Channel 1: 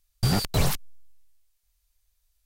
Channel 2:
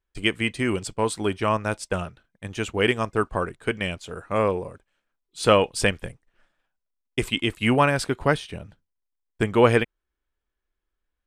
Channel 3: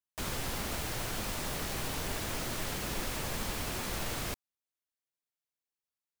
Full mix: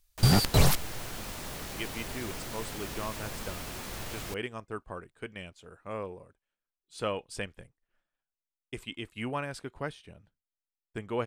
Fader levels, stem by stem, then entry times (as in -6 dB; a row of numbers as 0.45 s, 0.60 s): +1.5 dB, -15.0 dB, -3.5 dB; 0.00 s, 1.55 s, 0.00 s